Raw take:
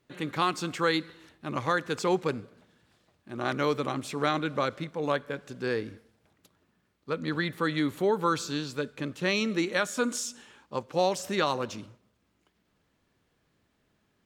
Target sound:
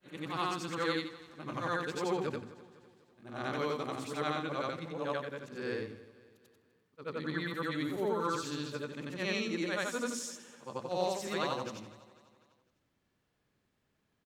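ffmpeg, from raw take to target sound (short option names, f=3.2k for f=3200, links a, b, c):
-af "afftfilt=real='re':imag='-im':win_size=8192:overlap=0.75,aecho=1:1:250|500|750|1000:0.112|0.0561|0.0281|0.014,volume=-2dB"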